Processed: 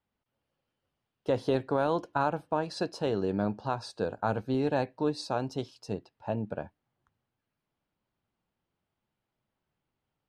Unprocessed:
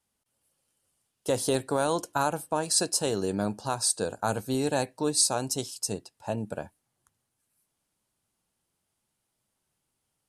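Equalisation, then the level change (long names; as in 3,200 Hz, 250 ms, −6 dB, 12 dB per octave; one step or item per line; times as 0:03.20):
high-frequency loss of the air 300 metres
0.0 dB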